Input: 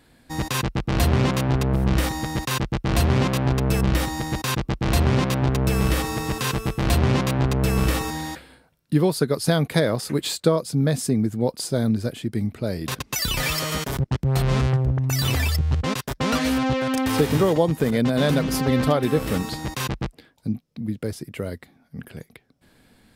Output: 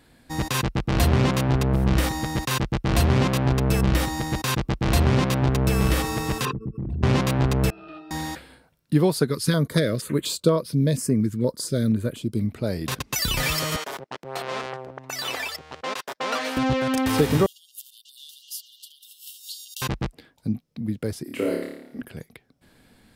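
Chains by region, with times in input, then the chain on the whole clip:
0:06.45–0:07.03: spectral envelope exaggerated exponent 3 + high-pass filter 220 Hz 6 dB per octave + parametric band 580 Hz −3.5 dB 0.4 octaves
0:07.70–0:08.11: high-pass filter 540 Hz + high shelf with overshoot 5,400 Hz −9 dB, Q 3 + resonances in every octave D#, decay 0.13 s
0:09.30–0:12.49: Butterworth band-reject 770 Hz, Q 3.1 + notch on a step sequencer 4.2 Hz 650–7,300 Hz
0:13.76–0:16.57: Chebyshev high-pass filter 590 Hz + high-shelf EQ 7,100 Hz −9 dB
0:17.46–0:19.82: downward compressor 10 to 1, threshold −28 dBFS + linear-phase brick-wall high-pass 2,700 Hz + high-shelf EQ 11,000 Hz +10.5 dB
0:21.23–0:22.02: low shelf with overshoot 190 Hz −10.5 dB, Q 3 + flutter between parallel walls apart 4.8 metres, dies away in 0.79 s
whole clip: no processing

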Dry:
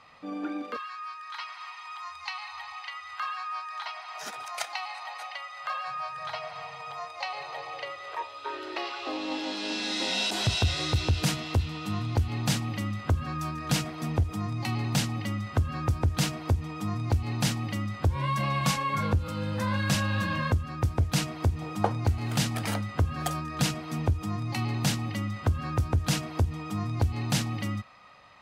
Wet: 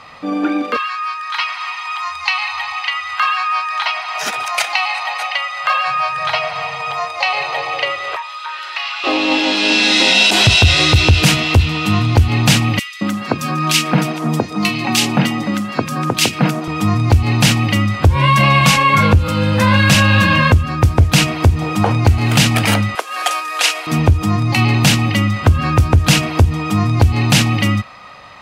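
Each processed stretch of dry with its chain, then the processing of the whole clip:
0:08.16–0:09.04: high-pass filter 950 Hz 24 dB per octave + downward compressor 2 to 1, threshold −42 dBFS
0:12.79–0:16.68: Butterworth high-pass 150 Hz + multiband delay without the direct sound highs, lows 220 ms, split 1,800 Hz
0:22.95–0:23.87: variable-slope delta modulation 64 kbit/s + Bessel high-pass filter 720 Hz, order 6
whole clip: dynamic equaliser 2,600 Hz, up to +7 dB, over −50 dBFS, Q 2; boost into a limiter +17 dB; level −1 dB

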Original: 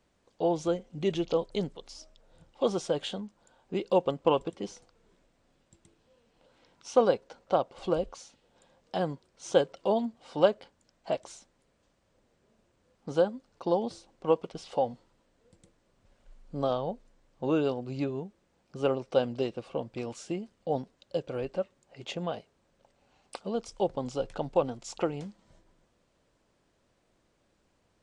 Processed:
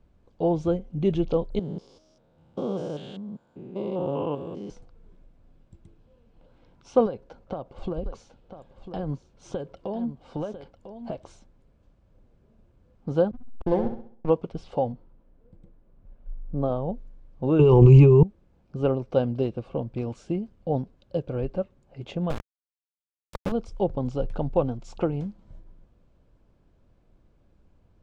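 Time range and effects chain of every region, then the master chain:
0:01.59–0:04.70: spectrum averaged block by block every 200 ms + high-pass filter 140 Hz
0:07.06–0:11.30: downward compressor, threshold −31 dBFS + single-tap delay 998 ms −11 dB
0:13.31–0:14.30: running median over 15 samples + slack as between gear wheels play −32 dBFS + flutter between parallel walls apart 11.4 metres, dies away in 0.52 s
0:14.92–0:16.89: low-pass filter 1,500 Hz 6 dB per octave + parametric band 85 Hz −5 dB 1.1 octaves
0:17.59–0:18.23: EQ curve with evenly spaced ripples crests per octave 0.73, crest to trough 16 dB + envelope flattener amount 100%
0:22.30–0:23.52: downward compressor 4 to 1, threshold −38 dBFS + EQ curve with evenly spaced ripples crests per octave 1.1, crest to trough 8 dB + log-companded quantiser 2 bits
whole clip: RIAA equalisation playback; notch filter 1,900 Hz, Q 12

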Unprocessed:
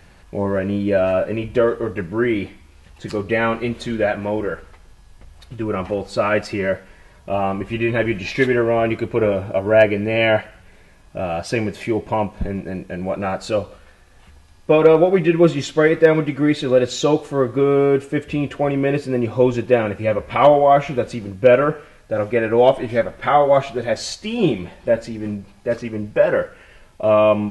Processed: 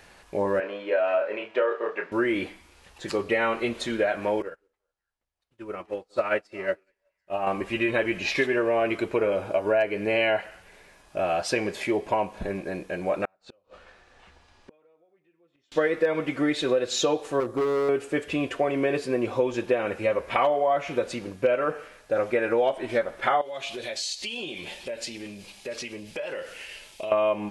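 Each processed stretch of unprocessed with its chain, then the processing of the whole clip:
0:00.60–0:02.12: band-pass filter 530–2,800 Hz + double-tracking delay 28 ms −6 dB
0:04.42–0:07.47: echo through a band-pass that steps 185 ms, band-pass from 320 Hz, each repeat 1.4 octaves, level −11 dB + expander for the loud parts 2.5 to 1, over −38 dBFS
0:13.25–0:15.72: downward compressor 2 to 1, threshold −39 dBFS + gate with flip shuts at −27 dBFS, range −32 dB + high-frequency loss of the air 100 metres
0:17.40–0:17.89: parametric band 2,300 Hz −11 dB 2.4 octaves + hard clipping −17.5 dBFS
0:23.41–0:27.12: high shelf with overshoot 2,000 Hz +10 dB, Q 1.5 + downward compressor 8 to 1, threshold −29 dBFS
whole clip: bass and treble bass −13 dB, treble +1 dB; downward compressor 6 to 1, threshold −20 dBFS

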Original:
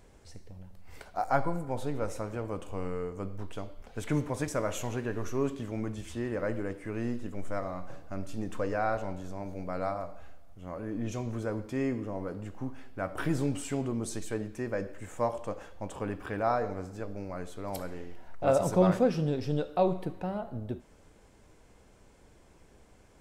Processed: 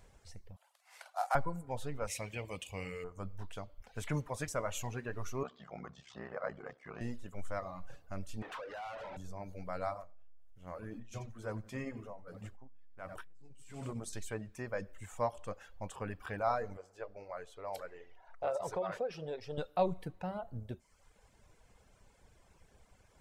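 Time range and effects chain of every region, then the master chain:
0:00.56–0:01.35: variable-slope delta modulation 64 kbit/s + Butterworth high-pass 610 Hz + double-tracking delay 48 ms −7.5 dB
0:02.07–0:03.04: high-pass filter 44 Hz + high shelf with overshoot 1,800 Hz +8 dB, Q 3
0:05.43–0:07.01: ring modulation 33 Hz + loudspeaker in its box 170–5,600 Hz, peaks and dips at 300 Hz −8 dB, 730 Hz +7 dB, 1,200 Hz +7 dB, 2,600 Hz −5 dB
0:08.42–0:09.17: bass and treble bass −14 dB, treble −10 dB + downward compressor 16 to 1, threshold −40 dBFS + mid-hump overdrive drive 28 dB, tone 2,300 Hz, clips at −32 dBFS
0:10.00–0:14.13: mains-hum notches 50/100/150/200/250/300/350/400 Hz + repeating echo 92 ms, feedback 56%, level −12 dB + saturating transformer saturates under 160 Hz
0:16.77–0:19.58: low-pass filter 3,300 Hz 6 dB per octave + low shelf with overshoot 320 Hz −10.5 dB, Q 1.5 + downward compressor 8 to 1, threshold −25 dBFS
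whole clip: reverb reduction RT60 0.9 s; parametric band 310 Hz −8.5 dB 1.1 octaves; level −2 dB

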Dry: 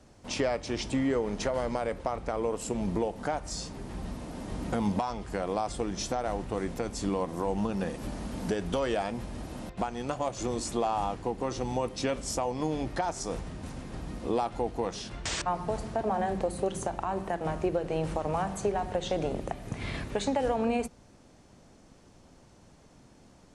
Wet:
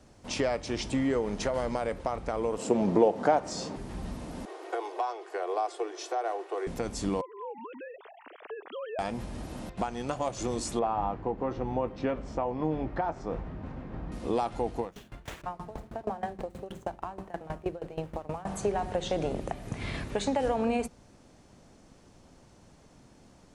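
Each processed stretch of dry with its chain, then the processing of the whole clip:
0:02.58–0:03.76: band-pass filter 130–7,700 Hz + parametric band 520 Hz +9 dB 2.7 octaves
0:04.45–0:06.67: Butterworth high-pass 340 Hz 96 dB per octave + high-shelf EQ 4,000 Hz −11 dB + comb filter 2.7 ms, depth 40%
0:07.21–0:08.99: three sine waves on the formant tracks + high-pass filter 460 Hz + downward compressor 2 to 1, threshold −42 dBFS
0:10.79–0:14.12: low-pass filter 1,800 Hz + double-tracking delay 19 ms −13 dB
0:14.80–0:18.46: running median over 9 samples + tremolo with a ramp in dB decaying 6.3 Hz, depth 20 dB
whole clip: no processing

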